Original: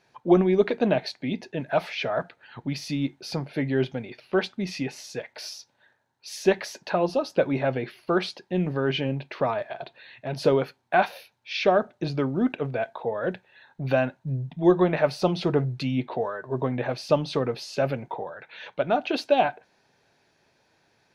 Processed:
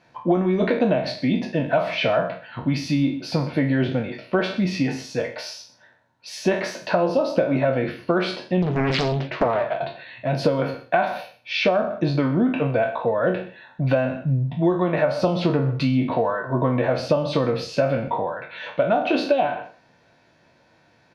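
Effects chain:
peak hold with a decay on every bin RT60 0.39 s
low-pass filter 2,700 Hz 6 dB per octave
notch comb filter 410 Hz
single-tap delay 124 ms −18 dB
downward compressor 12 to 1, threshold −24 dBFS, peak gain reduction 11.5 dB
0:08.62–0:09.81: highs frequency-modulated by the lows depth 0.97 ms
level +8.5 dB

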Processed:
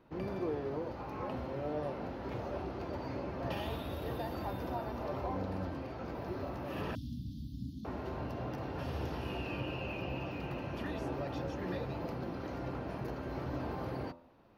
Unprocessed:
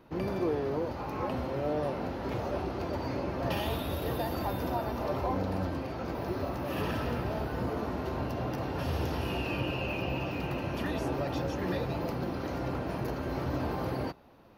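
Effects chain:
high-shelf EQ 5,700 Hz −8 dB
hum removal 84.94 Hz, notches 16
0:06.95–0:07.85: Chebyshev band-stop filter 280–3,400 Hz, order 5
level −5.5 dB

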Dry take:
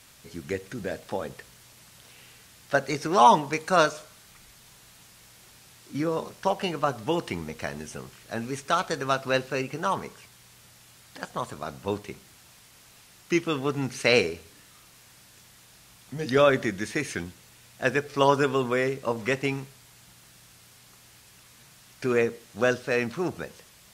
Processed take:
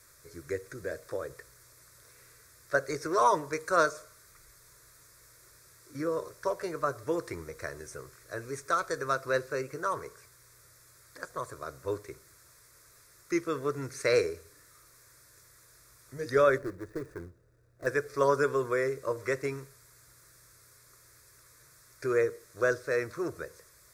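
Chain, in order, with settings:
0:16.58–0:17.87: running median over 41 samples
phaser with its sweep stopped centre 800 Hz, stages 6
level −2 dB

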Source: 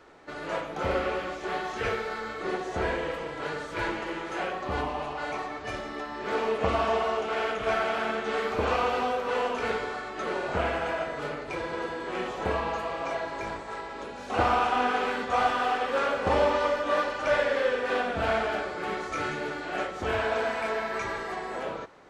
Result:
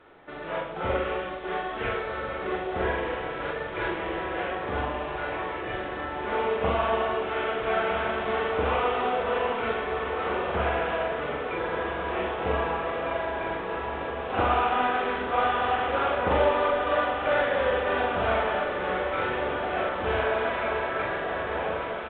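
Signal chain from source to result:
double-tracking delay 43 ms −3 dB
feedback delay with all-pass diffusion 1,464 ms, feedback 66%, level −6.5 dB
level −1.5 dB
A-law companding 64 kbit/s 8,000 Hz

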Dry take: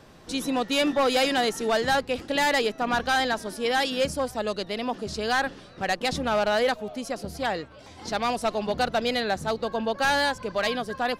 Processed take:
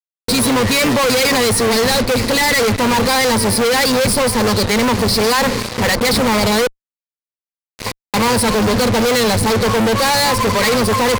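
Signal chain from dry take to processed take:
sub-octave generator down 1 octave, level −5 dB
noise gate with hold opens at −39 dBFS
0:01.45–0:02.63: dynamic equaliser 990 Hz, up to −7 dB, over −37 dBFS, Q 0.71
0:06.66–0:08.14: gate with flip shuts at −36 dBFS, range −37 dB
EQ curve with evenly spaced ripples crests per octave 0.92, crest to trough 17 dB
fuzz pedal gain 46 dB, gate −42 dBFS

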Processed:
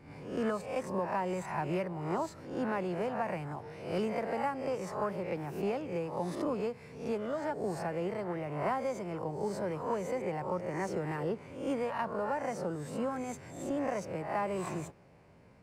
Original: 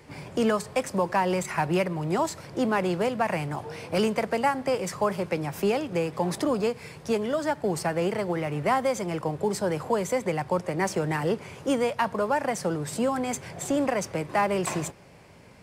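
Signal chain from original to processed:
peak hold with a rise ahead of every peak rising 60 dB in 0.58 s
high-shelf EQ 2,400 Hz −11 dB
notch filter 3,300 Hz, Q 20
level −9 dB

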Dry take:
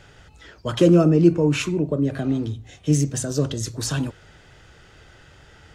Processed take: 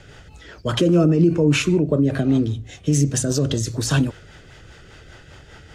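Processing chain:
brickwall limiter −14 dBFS, peak gain reduction 10 dB
rotating-speaker cabinet horn 5 Hz
level +7 dB

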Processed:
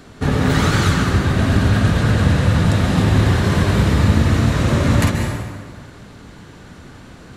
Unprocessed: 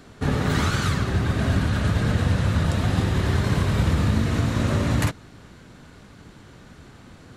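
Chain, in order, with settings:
dense smooth reverb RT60 1.6 s, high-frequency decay 0.7×, pre-delay 120 ms, DRR 3 dB
level +5 dB

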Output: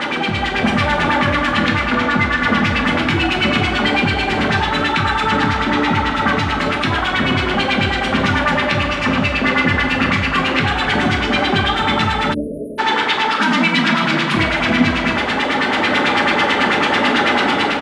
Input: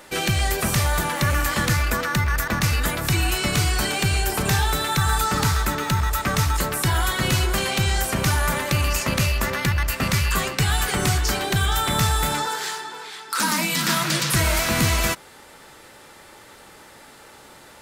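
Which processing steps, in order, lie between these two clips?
linear delta modulator 64 kbit/s, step −19 dBFS
auto-filter low-pass sine 9.1 Hz 510–3,200 Hz
in parallel at 0 dB: brickwall limiter −16 dBFS, peak gain reduction 9.5 dB
on the sum: octave-band graphic EQ 125/250/500 Hz −10/+9/−7 dB
automatic gain control gain up to 5.5 dB
high-pass filter 86 Hz 12 dB per octave
slap from a distant wall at 45 metres, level −10 dB
on a send at −1.5 dB: convolution reverb, pre-delay 3 ms
on the sum: time-frequency box erased 0:12.34–0:12.79, 650–9,100 Hz
level −3.5 dB

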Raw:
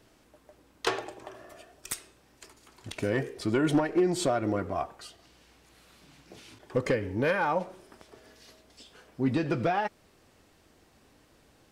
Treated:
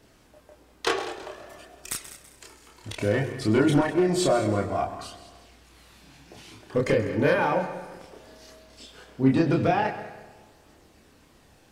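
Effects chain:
echo machine with several playback heads 66 ms, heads second and third, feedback 42%, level −14.5 dB
multi-voice chorus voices 2, 0.28 Hz, delay 29 ms, depth 1.3 ms
level +7 dB

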